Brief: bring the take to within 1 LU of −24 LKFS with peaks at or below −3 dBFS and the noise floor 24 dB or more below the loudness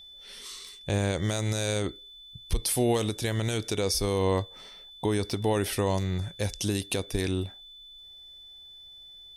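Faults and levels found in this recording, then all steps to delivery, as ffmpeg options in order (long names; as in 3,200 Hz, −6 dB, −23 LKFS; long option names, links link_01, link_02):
interfering tone 3,500 Hz; level of the tone −46 dBFS; integrated loudness −29.0 LKFS; sample peak −14.5 dBFS; target loudness −24.0 LKFS
→ -af "bandreject=frequency=3500:width=30"
-af "volume=5dB"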